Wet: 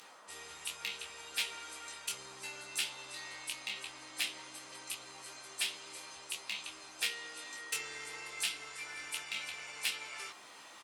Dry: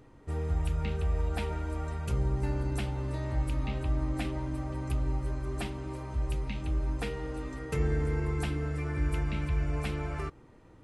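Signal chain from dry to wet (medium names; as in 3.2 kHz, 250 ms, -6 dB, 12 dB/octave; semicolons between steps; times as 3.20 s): frequency weighting D; Chebyshev shaper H 6 -21 dB, 7 -28 dB, 8 -25 dB, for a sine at -15.5 dBFS; reverse; upward compressor, threshold -36 dBFS; reverse; band noise 120–1200 Hz -46 dBFS; differentiator; on a send: early reflections 15 ms -4.5 dB, 25 ms -5 dB; on the sum: trim +4.5 dB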